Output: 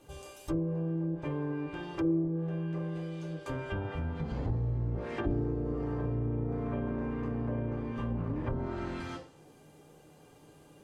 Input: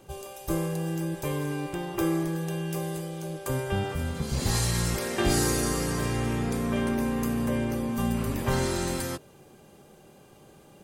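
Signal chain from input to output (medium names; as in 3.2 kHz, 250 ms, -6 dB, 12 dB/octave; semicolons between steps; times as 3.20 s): self-modulated delay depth 0.073 ms; FDN reverb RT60 0.46 s, low-frequency decay 0.85×, high-frequency decay 0.75×, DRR 0 dB; low-pass that closes with the level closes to 490 Hz, closed at -20 dBFS; trim -7 dB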